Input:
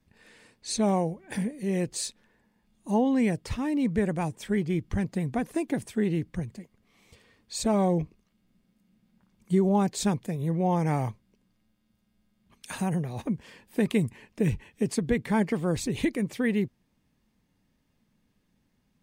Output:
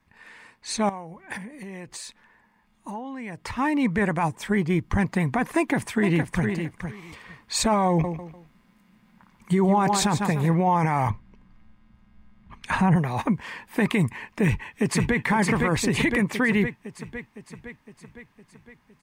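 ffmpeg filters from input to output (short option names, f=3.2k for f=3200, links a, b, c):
-filter_complex "[0:a]asettb=1/sr,asplit=3[a][b][c];[a]atrim=end=0.894[d];[b]atrim=start=0.89:end=3.57,asetpts=PTS-STARTPTS,afade=t=in:d=0.004:c=qsin,afade=t=out:st=2.676:d=0.004:c=qsin,acompressor=threshold=-35dB:ratio=12:attack=3.2:release=140:knee=1:detection=peak[e];[c]atrim=start=3.566[f];[d][e]acrossfade=d=0.004:c1=hsin:c2=qsin[g];[g][f]acrossfade=d=0.004:c1=qsin:c2=hsin,asettb=1/sr,asplit=3[h][i][j];[h]atrim=end=4.234[k];[i]atrim=start=4.23:end=5.02,asetpts=PTS-STARTPTS,afade=t=in:d=0.004:c=qsin,afade=t=out:st=0.786:d=0.004:c=qsin,equalizer=f=2.1k:t=o:w=1.6:g=-4.5[l];[j]atrim=start=5.016[m];[k][l]acrossfade=d=0.004:c1=hsin:c2=qsin[n];[n][m]acrossfade=d=0.004:c1=qsin:c2=hsin,asplit=2[o][p];[p]afade=t=in:st=5.56:d=0.01,afade=t=out:st=6.45:d=0.01,aecho=0:1:460|920:0.375837|0.0563756[q];[o][q]amix=inputs=2:normalize=0,asettb=1/sr,asplit=3[r][s][t];[r]atrim=end=7.894[u];[s]atrim=start=7.89:end=10.54,asetpts=PTS-STARTPTS,afade=t=in:d=0.004:c=qsin,afade=t=out:st=2.646:d=0.004:c=qsin,aecho=1:1:148|296|444:0.266|0.0851|0.0272,atrim=end_sample=116865[v];[t]atrim=start=10.536[w];[u][v]acrossfade=d=0.004:c1=hsin:c2=qsin[x];[x][w]acrossfade=d=0.004:c1=qsin:c2=hsin,asettb=1/sr,asplit=3[y][z][aa];[y]atrim=end=11.104[ab];[z]atrim=start=11.1:end=12.96,asetpts=PTS-STARTPTS,afade=t=in:d=0.004:c=qsin,afade=t=out:st=1.856:d=0.004:c=qsin,aemphasis=mode=reproduction:type=bsi[ac];[aa]atrim=start=12.956[ad];[ab][ac]acrossfade=d=0.004:c1=hsin:c2=qsin[ae];[ae][ad]acrossfade=d=0.004:c1=qsin:c2=hsin,asplit=2[af][ag];[ag]afade=t=in:st=14.44:d=0.01,afade=t=out:st=15.23:d=0.01,aecho=0:1:510|1020|1530|2040|2550|3060|3570|4080|4590:0.630957|0.378574|0.227145|0.136287|0.0817721|0.0490632|0.0294379|0.0176628|0.0105977[ah];[af][ah]amix=inputs=2:normalize=0,equalizer=f=500:t=o:w=1:g=-3,equalizer=f=1k:t=o:w=1:g=12,equalizer=f=2k:t=o:w=1:g=8,dynaudnorm=f=730:g=13:m=11.5dB,alimiter=limit=-13dB:level=0:latency=1:release=12"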